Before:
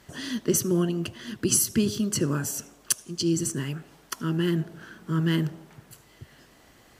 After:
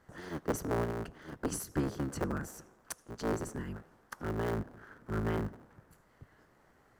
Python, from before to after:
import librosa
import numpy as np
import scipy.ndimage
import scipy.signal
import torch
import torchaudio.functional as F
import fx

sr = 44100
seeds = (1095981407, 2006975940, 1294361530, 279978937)

y = fx.cycle_switch(x, sr, every=3, mode='inverted')
y = fx.high_shelf_res(y, sr, hz=2100.0, db=-9.0, q=1.5)
y = F.gain(torch.from_numpy(y), -9.0).numpy()